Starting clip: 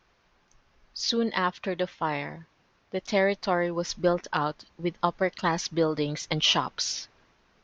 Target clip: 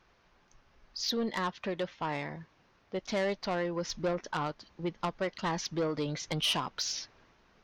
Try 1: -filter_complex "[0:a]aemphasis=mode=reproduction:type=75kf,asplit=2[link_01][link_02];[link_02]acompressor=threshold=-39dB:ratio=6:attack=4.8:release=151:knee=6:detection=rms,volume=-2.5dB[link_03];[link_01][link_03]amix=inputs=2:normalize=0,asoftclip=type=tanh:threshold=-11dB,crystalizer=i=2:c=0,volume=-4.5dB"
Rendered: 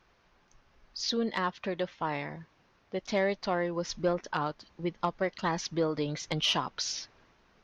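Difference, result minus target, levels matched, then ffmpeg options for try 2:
soft clipping: distortion −13 dB
-filter_complex "[0:a]aemphasis=mode=reproduction:type=75kf,asplit=2[link_01][link_02];[link_02]acompressor=threshold=-39dB:ratio=6:attack=4.8:release=151:knee=6:detection=rms,volume=-2.5dB[link_03];[link_01][link_03]amix=inputs=2:normalize=0,asoftclip=type=tanh:threshold=-20.5dB,crystalizer=i=2:c=0,volume=-4.5dB"

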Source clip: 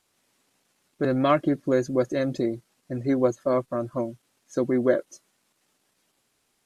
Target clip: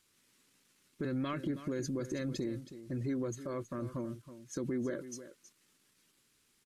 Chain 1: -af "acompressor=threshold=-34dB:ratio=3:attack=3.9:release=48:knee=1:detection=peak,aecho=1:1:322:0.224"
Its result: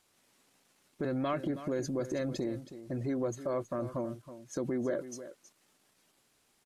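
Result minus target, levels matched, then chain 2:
1,000 Hz band +3.0 dB
-af "acompressor=threshold=-34dB:ratio=3:attack=3.9:release=48:knee=1:detection=peak,equalizer=frequency=710:width=1.6:gain=-13.5,aecho=1:1:322:0.224"

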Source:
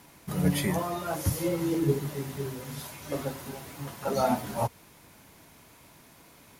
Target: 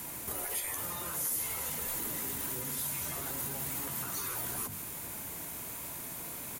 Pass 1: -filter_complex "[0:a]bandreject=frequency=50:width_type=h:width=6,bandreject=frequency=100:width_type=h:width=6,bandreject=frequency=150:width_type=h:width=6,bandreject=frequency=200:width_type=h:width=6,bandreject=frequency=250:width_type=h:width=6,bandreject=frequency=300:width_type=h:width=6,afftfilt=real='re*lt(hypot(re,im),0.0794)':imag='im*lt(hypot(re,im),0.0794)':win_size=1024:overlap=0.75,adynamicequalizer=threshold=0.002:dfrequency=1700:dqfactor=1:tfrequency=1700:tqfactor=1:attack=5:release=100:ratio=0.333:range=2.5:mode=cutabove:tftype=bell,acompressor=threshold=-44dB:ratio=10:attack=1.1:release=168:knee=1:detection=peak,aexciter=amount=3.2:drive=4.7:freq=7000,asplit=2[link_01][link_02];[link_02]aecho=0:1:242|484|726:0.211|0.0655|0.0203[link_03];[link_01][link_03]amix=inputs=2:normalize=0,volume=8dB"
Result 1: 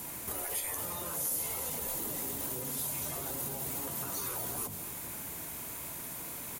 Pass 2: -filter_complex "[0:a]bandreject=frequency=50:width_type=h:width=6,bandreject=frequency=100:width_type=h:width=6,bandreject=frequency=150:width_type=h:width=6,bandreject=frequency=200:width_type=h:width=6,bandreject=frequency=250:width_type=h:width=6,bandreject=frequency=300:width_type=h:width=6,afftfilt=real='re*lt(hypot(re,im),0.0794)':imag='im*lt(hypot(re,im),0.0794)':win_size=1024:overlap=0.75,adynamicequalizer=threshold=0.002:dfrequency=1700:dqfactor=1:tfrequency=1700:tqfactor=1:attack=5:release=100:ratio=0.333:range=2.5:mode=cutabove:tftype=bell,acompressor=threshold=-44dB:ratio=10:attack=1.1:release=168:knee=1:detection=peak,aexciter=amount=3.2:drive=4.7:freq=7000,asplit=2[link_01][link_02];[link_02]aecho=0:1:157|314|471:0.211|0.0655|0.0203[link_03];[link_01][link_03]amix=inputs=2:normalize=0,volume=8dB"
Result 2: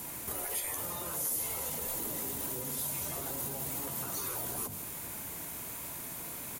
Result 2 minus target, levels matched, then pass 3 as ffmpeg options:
500 Hz band +2.5 dB
-filter_complex "[0:a]bandreject=frequency=50:width_type=h:width=6,bandreject=frequency=100:width_type=h:width=6,bandreject=frequency=150:width_type=h:width=6,bandreject=frequency=200:width_type=h:width=6,bandreject=frequency=250:width_type=h:width=6,bandreject=frequency=300:width_type=h:width=6,afftfilt=real='re*lt(hypot(re,im),0.0794)':imag='im*lt(hypot(re,im),0.0794)':win_size=1024:overlap=0.75,adynamicequalizer=threshold=0.002:dfrequency=570:dqfactor=1:tfrequency=570:tqfactor=1:attack=5:release=100:ratio=0.333:range=2.5:mode=cutabove:tftype=bell,acompressor=threshold=-44dB:ratio=10:attack=1.1:release=168:knee=1:detection=peak,aexciter=amount=3.2:drive=4.7:freq=7000,asplit=2[link_01][link_02];[link_02]aecho=0:1:157|314|471:0.211|0.0655|0.0203[link_03];[link_01][link_03]amix=inputs=2:normalize=0,volume=8dB"

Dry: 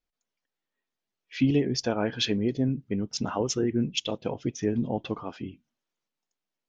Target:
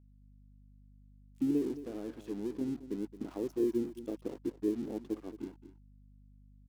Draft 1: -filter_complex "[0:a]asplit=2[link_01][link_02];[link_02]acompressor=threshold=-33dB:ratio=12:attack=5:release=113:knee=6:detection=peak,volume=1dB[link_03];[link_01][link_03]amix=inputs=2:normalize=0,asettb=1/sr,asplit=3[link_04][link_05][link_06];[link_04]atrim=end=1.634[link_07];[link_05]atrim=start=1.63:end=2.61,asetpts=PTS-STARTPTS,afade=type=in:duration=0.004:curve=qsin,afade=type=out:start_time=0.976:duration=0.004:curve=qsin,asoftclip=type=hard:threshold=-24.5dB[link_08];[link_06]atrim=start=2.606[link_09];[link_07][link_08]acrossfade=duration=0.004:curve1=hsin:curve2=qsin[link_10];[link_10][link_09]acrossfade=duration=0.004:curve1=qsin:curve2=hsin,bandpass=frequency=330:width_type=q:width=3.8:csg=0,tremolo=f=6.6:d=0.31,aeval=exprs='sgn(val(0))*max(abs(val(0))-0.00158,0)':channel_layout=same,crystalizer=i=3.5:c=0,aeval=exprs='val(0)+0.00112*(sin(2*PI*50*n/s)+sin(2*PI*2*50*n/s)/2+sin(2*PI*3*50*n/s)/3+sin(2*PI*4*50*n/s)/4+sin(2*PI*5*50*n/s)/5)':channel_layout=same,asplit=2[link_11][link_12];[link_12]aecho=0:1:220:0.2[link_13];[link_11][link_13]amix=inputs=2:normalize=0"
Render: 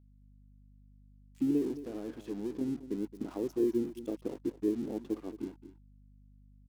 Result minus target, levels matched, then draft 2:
downward compressor: peak gain reduction −9.5 dB
-filter_complex "[0:a]asplit=2[link_01][link_02];[link_02]acompressor=threshold=-43.5dB:ratio=12:attack=5:release=113:knee=6:detection=peak,volume=1dB[link_03];[link_01][link_03]amix=inputs=2:normalize=0,asettb=1/sr,asplit=3[link_04][link_05][link_06];[link_04]atrim=end=1.634[link_07];[link_05]atrim=start=1.63:end=2.61,asetpts=PTS-STARTPTS,afade=type=in:duration=0.004:curve=qsin,afade=type=out:start_time=0.976:duration=0.004:curve=qsin,asoftclip=type=hard:threshold=-24.5dB[link_08];[link_06]atrim=start=2.606[link_09];[link_07][link_08]acrossfade=duration=0.004:curve1=hsin:curve2=qsin[link_10];[link_10][link_09]acrossfade=duration=0.004:curve1=qsin:curve2=hsin,bandpass=frequency=330:width_type=q:width=3.8:csg=0,tremolo=f=6.6:d=0.31,aeval=exprs='sgn(val(0))*max(abs(val(0))-0.00158,0)':channel_layout=same,crystalizer=i=3.5:c=0,aeval=exprs='val(0)+0.00112*(sin(2*PI*50*n/s)+sin(2*PI*2*50*n/s)/2+sin(2*PI*3*50*n/s)/3+sin(2*PI*4*50*n/s)/4+sin(2*PI*5*50*n/s)/5)':channel_layout=same,asplit=2[link_11][link_12];[link_12]aecho=0:1:220:0.2[link_13];[link_11][link_13]amix=inputs=2:normalize=0"

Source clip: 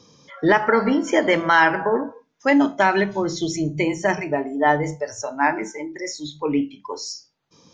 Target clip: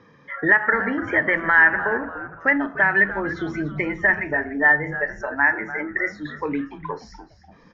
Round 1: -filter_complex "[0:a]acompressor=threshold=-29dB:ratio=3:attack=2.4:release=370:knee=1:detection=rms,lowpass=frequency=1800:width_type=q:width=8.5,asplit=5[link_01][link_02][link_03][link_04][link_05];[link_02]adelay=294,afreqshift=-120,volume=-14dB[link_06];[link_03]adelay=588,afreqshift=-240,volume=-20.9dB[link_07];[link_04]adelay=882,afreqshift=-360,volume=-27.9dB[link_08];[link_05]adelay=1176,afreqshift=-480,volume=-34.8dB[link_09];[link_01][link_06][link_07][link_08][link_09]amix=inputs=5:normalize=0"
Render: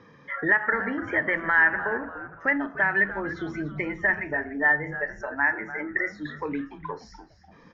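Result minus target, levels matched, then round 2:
downward compressor: peak gain reduction +5 dB
-filter_complex "[0:a]acompressor=threshold=-21.5dB:ratio=3:attack=2.4:release=370:knee=1:detection=rms,lowpass=frequency=1800:width_type=q:width=8.5,asplit=5[link_01][link_02][link_03][link_04][link_05];[link_02]adelay=294,afreqshift=-120,volume=-14dB[link_06];[link_03]adelay=588,afreqshift=-240,volume=-20.9dB[link_07];[link_04]adelay=882,afreqshift=-360,volume=-27.9dB[link_08];[link_05]adelay=1176,afreqshift=-480,volume=-34.8dB[link_09];[link_01][link_06][link_07][link_08][link_09]amix=inputs=5:normalize=0"

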